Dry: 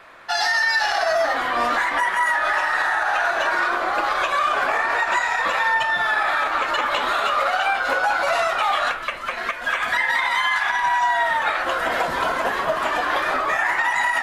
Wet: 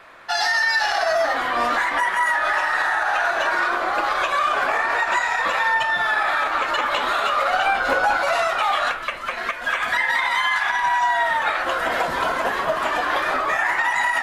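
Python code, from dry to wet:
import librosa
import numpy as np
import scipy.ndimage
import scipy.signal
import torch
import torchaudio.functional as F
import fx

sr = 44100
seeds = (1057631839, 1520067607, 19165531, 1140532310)

y = fx.low_shelf(x, sr, hz=400.0, db=8.5, at=(7.5, 8.18))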